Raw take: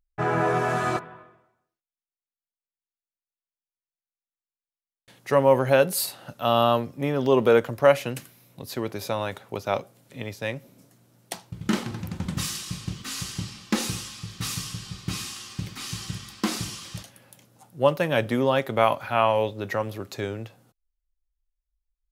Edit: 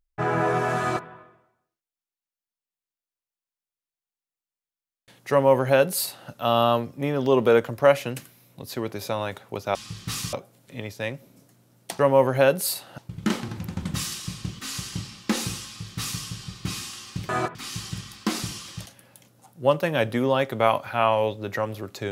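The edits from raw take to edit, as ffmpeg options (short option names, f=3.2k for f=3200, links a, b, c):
-filter_complex "[0:a]asplit=7[a][b][c][d][e][f][g];[a]atrim=end=9.752[h];[b]atrim=start=14.078:end=14.662[i];[c]atrim=start=9.748:end=11.412[j];[d]atrim=start=5.308:end=6.302[k];[e]atrim=start=11.408:end=15.722[l];[f]atrim=start=0.798:end=1.062[m];[g]atrim=start=15.718[n];[h][i]acrossfade=d=0.004:c1=hsin:c2=hsin[o];[o][j]acrossfade=d=0.004:c1=hsin:c2=hsin[p];[p][k]acrossfade=d=0.004:c1=hsin:c2=hsin[q];[q][l]acrossfade=d=0.004:c1=hsin:c2=hsin[r];[r][m]acrossfade=d=0.004:c1=hsin:c2=hsin[s];[s][n]acrossfade=d=0.004:c1=hsin:c2=hsin"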